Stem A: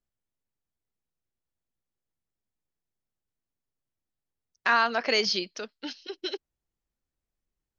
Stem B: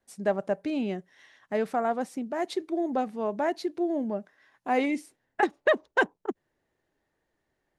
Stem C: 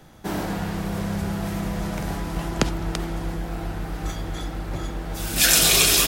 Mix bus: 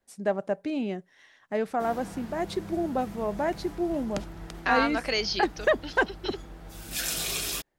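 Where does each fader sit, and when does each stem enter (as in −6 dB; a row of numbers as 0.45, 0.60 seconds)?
−3.0, −0.5, −14.0 decibels; 0.00, 0.00, 1.55 seconds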